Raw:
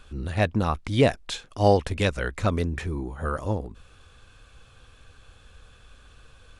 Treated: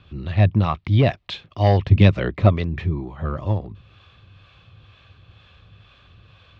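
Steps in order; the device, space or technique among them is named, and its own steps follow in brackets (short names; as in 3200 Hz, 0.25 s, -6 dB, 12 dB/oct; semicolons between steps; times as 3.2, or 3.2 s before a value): guitar amplifier with harmonic tremolo (harmonic tremolo 2.1 Hz, depth 50%, crossover 460 Hz; soft clip -12.5 dBFS, distortion -17 dB; speaker cabinet 85–3900 Hz, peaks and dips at 100 Hz +8 dB, 160 Hz +4 dB, 260 Hz -6 dB, 470 Hz -9 dB, 850 Hz -5 dB, 1500 Hz -9 dB); 1.9–2.48 bell 150 Hz -> 490 Hz +9.5 dB 2.2 oct; gain +7.5 dB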